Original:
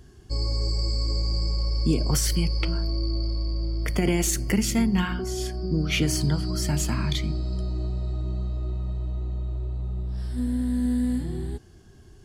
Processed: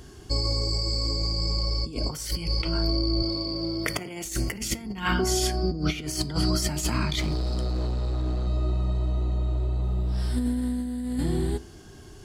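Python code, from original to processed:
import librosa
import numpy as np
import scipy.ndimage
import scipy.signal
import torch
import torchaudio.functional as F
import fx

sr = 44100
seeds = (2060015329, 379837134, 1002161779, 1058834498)

y = fx.low_shelf(x, sr, hz=240.0, db=-8.0)
y = fx.notch(y, sr, hz=1700.0, q=16.0)
y = fx.over_compress(y, sr, threshold_db=-32.0, ratio=-0.5)
y = fx.highpass(y, sr, hz=130.0, slope=12, at=(3.22, 4.25))
y = fx.clip_hard(y, sr, threshold_db=-31.5, at=(7.19, 8.47))
y = fx.rev_fdn(y, sr, rt60_s=0.55, lf_ratio=1.0, hf_ratio=0.45, size_ms=20.0, drr_db=15.0)
y = y * librosa.db_to_amplitude(7.0)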